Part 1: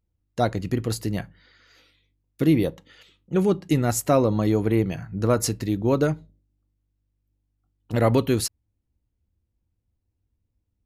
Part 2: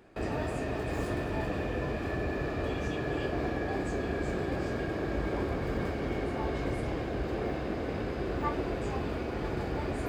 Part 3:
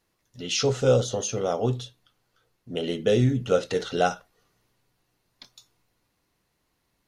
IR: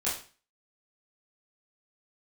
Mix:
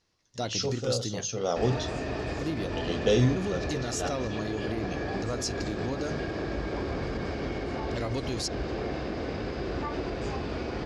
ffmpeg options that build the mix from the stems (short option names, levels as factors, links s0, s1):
-filter_complex "[0:a]equalizer=f=9000:w=0.42:g=8,bandreject=f=50:t=h:w=6,bandreject=f=100:t=h:w=6,bandreject=f=150:t=h:w=6,asoftclip=type=tanh:threshold=0.335,volume=0.398,asplit=2[s0][s1];[1:a]adelay=1400,volume=1.12[s2];[2:a]volume=0.794[s3];[s1]apad=whole_len=312186[s4];[s3][s4]sidechaincompress=threshold=0.0141:ratio=4:attack=5.1:release=458[s5];[s0][s2]amix=inputs=2:normalize=0,alimiter=limit=0.0708:level=0:latency=1:release=71,volume=1[s6];[s5][s6]amix=inputs=2:normalize=0,lowpass=f=5500:t=q:w=2.4"